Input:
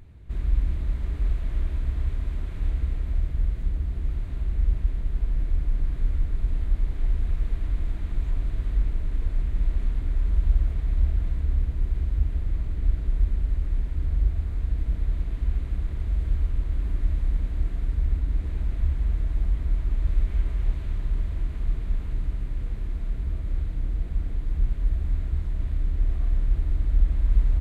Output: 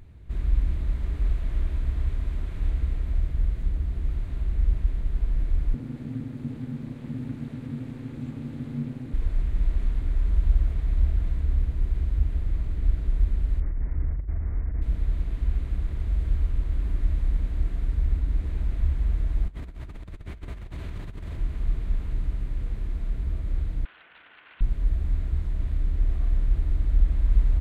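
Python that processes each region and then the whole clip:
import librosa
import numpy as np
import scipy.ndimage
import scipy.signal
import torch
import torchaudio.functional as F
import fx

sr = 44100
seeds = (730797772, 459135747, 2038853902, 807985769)

y = fx.chain(x, sr, fx.highpass(hz=51.0, slope=24),
    fx.ring_mod(carrier_hz=190.0), at=(5.74, 9.14))
y = fx.chain(y, sr, fx.ellip_lowpass(hz=2100.0, order=4, stop_db=50),
    fx.over_compress(threshold_db=-24.0, ratio=-0.5), at=(13.6, 14.82))
y = fx.chain(y, sr, fx.highpass(hz=120.0, slope=6),
    fx.over_compress(threshold_db=-35.0, ratio=-0.5), at=(19.48, 21.38))
y = fx.chain(y, sr, fx.cvsd(bps=16000),
    fx.highpass(hz=980.0, slope=12),
    fx.peak_eq(hz=1500.0, db=6.5, octaves=0.21), at=(23.85, 24.61))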